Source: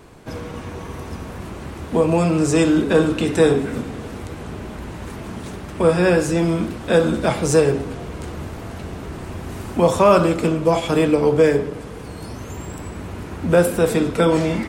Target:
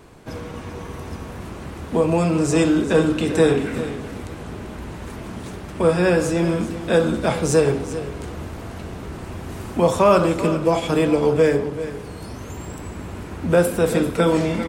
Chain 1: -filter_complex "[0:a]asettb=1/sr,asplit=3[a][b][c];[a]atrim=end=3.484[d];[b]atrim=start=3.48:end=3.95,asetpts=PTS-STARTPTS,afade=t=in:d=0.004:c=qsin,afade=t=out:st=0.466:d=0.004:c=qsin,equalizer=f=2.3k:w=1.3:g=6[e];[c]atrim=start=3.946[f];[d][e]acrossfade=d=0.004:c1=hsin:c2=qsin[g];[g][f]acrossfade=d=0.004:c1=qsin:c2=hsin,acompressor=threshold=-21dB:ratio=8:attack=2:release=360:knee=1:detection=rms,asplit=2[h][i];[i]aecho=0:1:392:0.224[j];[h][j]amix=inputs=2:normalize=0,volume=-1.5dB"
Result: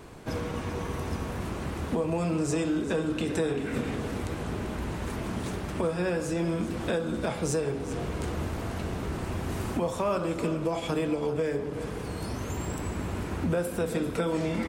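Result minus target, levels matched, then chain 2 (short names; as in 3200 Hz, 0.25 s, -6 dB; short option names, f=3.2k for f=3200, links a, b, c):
compressor: peak gain reduction +14 dB
-filter_complex "[0:a]asettb=1/sr,asplit=3[a][b][c];[a]atrim=end=3.484[d];[b]atrim=start=3.48:end=3.95,asetpts=PTS-STARTPTS,afade=t=in:d=0.004:c=qsin,afade=t=out:st=0.466:d=0.004:c=qsin,equalizer=f=2.3k:w=1.3:g=6[e];[c]atrim=start=3.946[f];[d][e]acrossfade=d=0.004:c1=hsin:c2=qsin[g];[g][f]acrossfade=d=0.004:c1=qsin:c2=hsin,asplit=2[h][i];[i]aecho=0:1:392:0.224[j];[h][j]amix=inputs=2:normalize=0,volume=-1.5dB"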